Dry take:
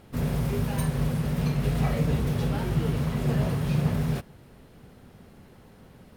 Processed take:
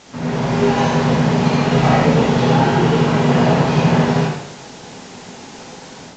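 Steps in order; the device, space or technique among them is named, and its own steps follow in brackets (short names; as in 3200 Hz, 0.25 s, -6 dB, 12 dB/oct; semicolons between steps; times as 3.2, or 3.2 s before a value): filmed off a television (BPF 180–7100 Hz; bell 880 Hz +8.5 dB 0.42 oct; reverb RT60 0.70 s, pre-delay 57 ms, DRR -4 dB; white noise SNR 21 dB; AGC gain up to 6.5 dB; gain +4 dB; AAC 32 kbps 16000 Hz)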